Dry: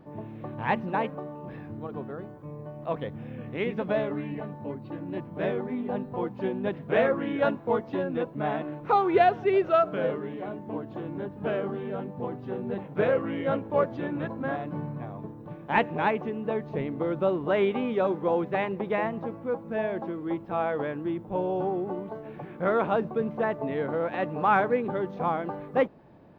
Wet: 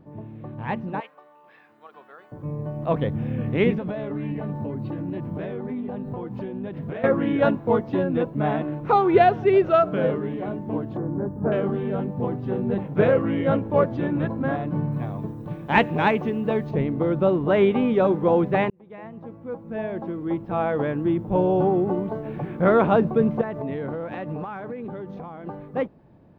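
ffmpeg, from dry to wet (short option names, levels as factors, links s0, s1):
-filter_complex "[0:a]asettb=1/sr,asplit=3[s0][s1][s2];[s0]atrim=end=1.004[s3];[s1]atrim=start=1:end=2.32,asetpts=PTS-STARTPTS,afade=t=in:d=0.004:c=qsin,afade=t=out:st=1.316:d=0.004:c=qsin,highpass=1200[s4];[s2]atrim=start=2.316[s5];[s3][s4]acrossfade=d=0.004:c1=hsin:c2=qsin[s6];[s6][s5]acrossfade=d=0.004:c1=qsin:c2=hsin,asettb=1/sr,asplit=3[s7][s8][s9];[s7]atrim=end=3.744[s10];[s8]atrim=start=3.74:end=7.04,asetpts=PTS-STARTPTS,afade=t=in:d=0.004:c=qsin,afade=t=out:st=3.296:d=0.004:c=qsin,acompressor=threshold=0.0158:ratio=6:attack=3.2:release=140:knee=1:detection=peak[s11];[s9]atrim=start=7.036[s12];[s10][s11]acrossfade=d=0.004:c1=hsin:c2=qsin[s13];[s13][s12]acrossfade=d=0.004:c1=qsin:c2=hsin,asettb=1/sr,asplit=3[s14][s15][s16];[s14]atrim=end=10.974[s17];[s15]atrim=start=10.97:end=11.52,asetpts=PTS-STARTPTS,afade=t=in:d=0.004:c=qsin,afade=t=out:st=0.546:d=0.004:c=qsin,asuperstop=centerf=3200:order=4:qfactor=0.57[s18];[s16]atrim=start=11.516[s19];[s17][s18]acrossfade=d=0.004:c1=hsin:c2=qsin[s20];[s20][s19]acrossfade=d=0.004:c1=qsin:c2=hsin,asettb=1/sr,asplit=3[s21][s22][s23];[s21]atrim=end=14.924[s24];[s22]atrim=start=14.92:end=16.71,asetpts=PTS-STARTPTS,afade=t=in:d=0.004:c=qsin,afade=t=out:st=1.786:d=0.004:c=qsin,highshelf=f=2700:g=10[s25];[s23]atrim=start=16.706[s26];[s24][s25]acrossfade=d=0.004:c1=hsin:c2=qsin[s27];[s27][s26]acrossfade=d=0.004:c1=qsin:c2=hsin,asettb=1/sr,asplit=3[s28][s29][s30];[s28]atrim=end=23.414[s31];[s29]atrim=start=23.41:end=25.47,asetpts=PTS-STARTPTS,afade=t=in:d=0.004:c=qsin,afade=t=out:st=2.056:d=0.004:c=qsin,acompressor=threshold=0.0251:ratio=12:attack=3.2:release=140:knee=1:detection=peak[s32];[s30]atrim=start=25.466[s33];[s31][s32]acrossfade=d=0.004:c1=hsin:c2=qsin[s34];[s34][s33]acrossfade=d=0.004:c1=qsin:c2=hsin,asplit=2[s35][s36];[s35]atrim=end=18.7,asetpts=PTS-STARTPTS,afade=t=out:st=18.696:d=0.004:c=hsin[s37];[s36]atrim=start=18.7,asetpts=PTS-STARTPTS,afade=t=in:d=2.69[s38];[s37][s38]concat=n=2:v=0:a=1,lowshelf=f=260:g=9.5,dynaudnorm=f=200:g=21:m=3.76,volume=0.596"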